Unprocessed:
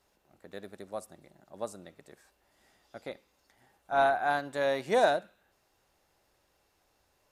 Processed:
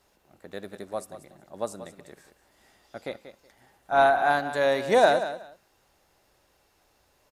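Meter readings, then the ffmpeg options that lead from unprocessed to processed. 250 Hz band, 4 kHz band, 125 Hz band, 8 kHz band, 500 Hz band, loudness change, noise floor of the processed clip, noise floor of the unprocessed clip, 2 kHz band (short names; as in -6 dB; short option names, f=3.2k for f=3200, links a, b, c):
+5.5 dB, +6.0 dB, +5.5 dB, +6.0 dB, +6.0 dB, +5.5 dB, -67 dBFS, -73 dBFS, +6.0 dB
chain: -af "aecho=1:1:186|372:0.251|0.0452,volume=5.5dB"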